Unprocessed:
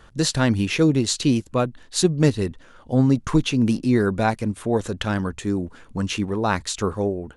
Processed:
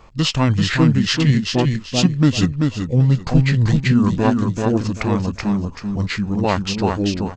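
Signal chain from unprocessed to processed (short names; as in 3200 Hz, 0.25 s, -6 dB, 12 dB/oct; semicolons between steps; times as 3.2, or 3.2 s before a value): on a send: feedback echo 0.387 s, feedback 25%, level -4 dB; on the sum: formant shift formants -6 st; gain +3 dB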